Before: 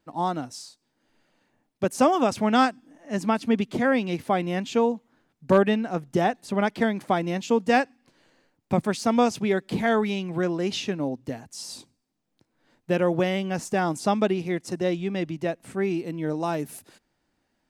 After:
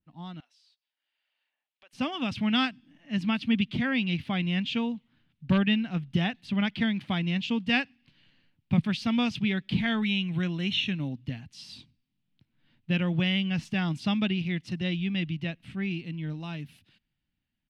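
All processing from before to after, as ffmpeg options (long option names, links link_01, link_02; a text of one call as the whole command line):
ffmpeg -i in.wav -filter_complex "[0:a]asettb=1/sr,asplit=3[link_01][link_02][link_03];[link_01]atrim=end=0.404[link_04];[link_02]atrim=start=0.4:end=1.93,asetpts=PTS-STARTPTS,afade=type=in:duration=0.004:curve=qsin,afade=type=out:start_time=1.526:duration=0.004:curve=qsin,highpass=frequency=560:width=0.5412,highpass=frequency=560:width=1.3066,acompressor=threshold=-46dB:ratio=2.5:attack=3.2:release=140:knee=1:detection=peak[link_05];[link_03]atrim=start=1.926[link_06];[link_04][link_05]acrossfade=duration=0.004:curve1=hsin:curve2=qsin[link_07];[link_07][link_06]acrossfade=duration=0.004:curve1=qsin:curve2=hsin,asettb=1/sr,asplit=3[link_08][link_09][link_10];[link_08]atrim=end=10.024[link_11];[link_09]atrim=start=10.02:end=11.13,asetpts=PTS-STARTPTS,afade=type=in:duration=0.004:curve=qsin,afade=type=out:start_time=1.106:duration=0.004:curve=qsin,acrossover=split=3200[link_12][link_13];[link_13]acompressor=threshold=-40dB:ratio=4:attack=1:release=60[link_14];[link_12][link_14]amix=inputs=2:normalize=0,asuperstop=centerf=4800:order=12:qfactor=5.6,aemphasis=mode=production:type=cd[link_15];[link_10]atrim=start=11.126[link_16];[link_11][link_15]acrossfade=duration=0.004:curve1=hsin:curve2=qsin[link_17];[link_17][link_16]acrossfade=duration=0.004:curve1=qsin:curve2=hsin,firequalizer=gain_entry='entry(150,0);entry(410,-21);entry(2900,-1);entry(6900,-27)':delay=0.05:min_phase=1,dynaudnorm=framelen=350:gausssize=11:maxgain=9dB,adynamicequalizer=threshold=0.00562:dfrequency=1700:dqfactor=0.7:tfrequency=1700:tqfactor=0.7:attack=5:release=100:ratio=0.375:range=2.5:mode=boostabove:tftype=highshelf,volume=-4.5dB" out.wav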